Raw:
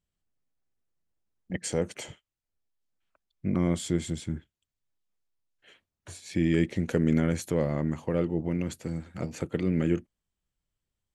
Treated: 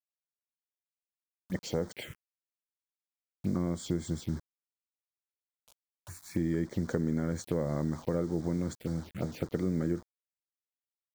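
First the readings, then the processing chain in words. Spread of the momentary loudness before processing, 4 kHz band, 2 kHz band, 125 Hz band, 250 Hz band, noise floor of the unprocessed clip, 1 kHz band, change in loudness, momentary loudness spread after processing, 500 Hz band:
12 LU, -5.0 dB, -7.5 dB, -4.0 dB, -4.5 dB, under -85 dBFS, -3.5 dB, -4.5 dB, 8 LU, -4.5 dB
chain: high shelf 4000 Hz -3.5 dB; bit-crush 8-bit; compressor, threshold -26 dBFS, peak gain reduction 7.5 dB; envelope phaser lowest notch 310 Hz, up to 2700 Hz, full sweep at -30 dBFS; dynamic EQ 1500 Hz, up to +4 dB, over -51 dBFS, Q 1

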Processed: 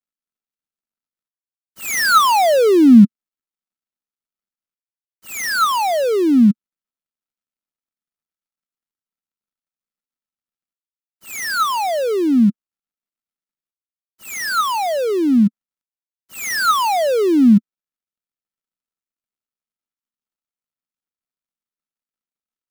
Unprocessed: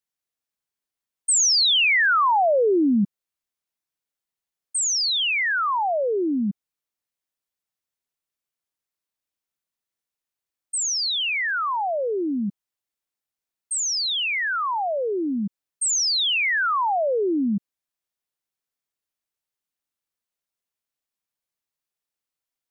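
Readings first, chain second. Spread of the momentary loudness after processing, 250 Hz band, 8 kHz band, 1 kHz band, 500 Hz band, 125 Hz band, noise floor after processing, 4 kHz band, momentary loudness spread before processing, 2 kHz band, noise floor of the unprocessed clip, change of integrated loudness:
13 LU, +11.5 dB, -6.0 dB, +5.5 dB, +6.0 dB, +12.5 dB, under -85 dBFS, -5.0 dB, 11 LU, -1.0 dB, under -85 dBFS, +6.0 dB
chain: switching dead time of 0.17 ms; small resonant body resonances 220/1300 Hz, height 9 dB, ringing for 30 ms; gain +5 dB

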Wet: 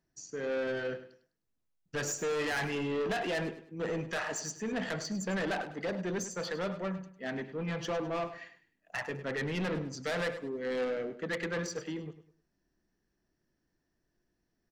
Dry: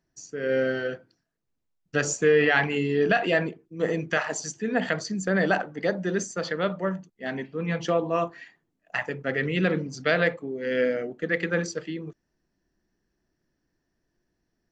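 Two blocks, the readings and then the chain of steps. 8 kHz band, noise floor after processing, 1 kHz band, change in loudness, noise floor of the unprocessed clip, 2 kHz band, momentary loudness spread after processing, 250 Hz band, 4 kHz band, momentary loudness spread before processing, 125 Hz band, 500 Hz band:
-5.0 dB, -81 dBFS, -8.0 dB, -9.0 dB, -78 dBFS, -10.0 dB, 7 LU, -8.0 dB, -5.5 dB, 11 LU, -8.0 dB, -9.0 dB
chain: soft clip -26 dBFS, distortion -7 dB; feedback echo 0.102 s, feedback 31%, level -13 dB; gain -3.5 dB

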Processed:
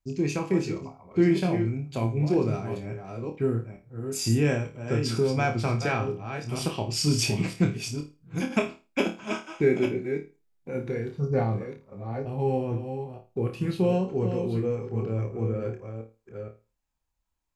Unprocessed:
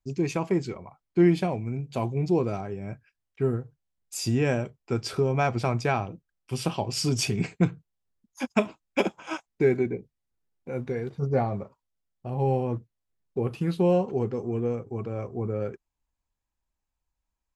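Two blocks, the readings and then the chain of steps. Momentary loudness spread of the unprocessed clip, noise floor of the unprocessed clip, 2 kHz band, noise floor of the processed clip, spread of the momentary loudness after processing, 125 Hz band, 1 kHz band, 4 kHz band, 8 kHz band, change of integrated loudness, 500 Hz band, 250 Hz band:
13 LU, -84 dBFS, +1.5 dB, -78 dBFS, 12 LU, +1.5 dB, -2.0 dB, +2.0 dB, +2.0 dB, 0.0 dB, -0.5 dB, +0.5 dB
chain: reverse delay 0.471 s, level -8 dB; dynamic EQ 780 Hz, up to -5 dB, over -40 dBFS, Q 0.96; flutter echo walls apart 4.6 m, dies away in 0.29 s

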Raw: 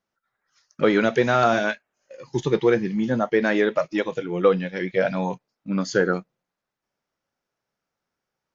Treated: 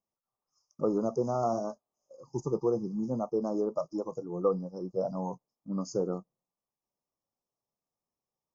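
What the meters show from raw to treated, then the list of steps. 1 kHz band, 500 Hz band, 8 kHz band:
-11.0 dB, -9.5 dB, n/a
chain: Chebyshev band-stop 1200–5000 Hz, order 5; gain -8.5 dB

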